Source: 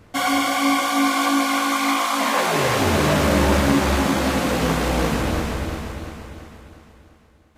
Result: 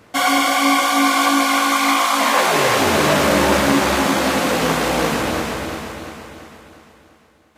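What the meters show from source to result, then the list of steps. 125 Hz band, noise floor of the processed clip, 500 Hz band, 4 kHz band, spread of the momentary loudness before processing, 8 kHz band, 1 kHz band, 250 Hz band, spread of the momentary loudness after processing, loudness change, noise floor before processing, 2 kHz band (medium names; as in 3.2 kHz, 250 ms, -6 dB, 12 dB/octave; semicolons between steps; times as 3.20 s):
-4.0 dB, -52 dBFS, +3.5 dB, +5.0 dB, 11 LU, +5.0 dB, +4.5 dB, +1.0 dB, 10 LU, +3.5 dB, -53 dBFS, +5.0 dB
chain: high-pass 310 Hz 6 dB/octave; trim +5 dB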